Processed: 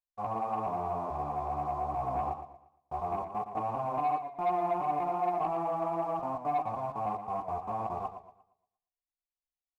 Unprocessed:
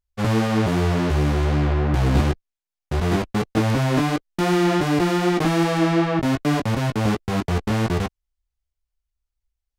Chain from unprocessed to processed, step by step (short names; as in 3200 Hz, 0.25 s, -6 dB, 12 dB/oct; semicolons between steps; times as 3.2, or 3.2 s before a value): vocal tract filter a; sample leveller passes 1; warbling echo 0.117 s, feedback 35%, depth 96 cents, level -9.5 dB